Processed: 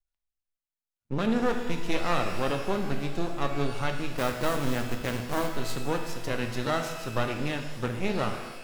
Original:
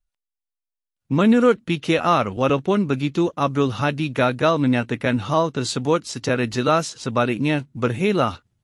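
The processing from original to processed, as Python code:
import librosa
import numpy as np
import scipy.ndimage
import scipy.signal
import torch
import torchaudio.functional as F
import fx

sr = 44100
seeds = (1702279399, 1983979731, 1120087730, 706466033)

y = fx.delta_hold(x, sr, step_db=-20.0, at=(4.17, 5.54))
y = np.maximum(y, 0.0)
y = fx.rev_shimmer(y, sr, seeds[0], rt60_s=1.2, semitones=12, shimmer_db=-8, drr_db=4.5)
y = y * librosa.db_to_amplitude(-7.5)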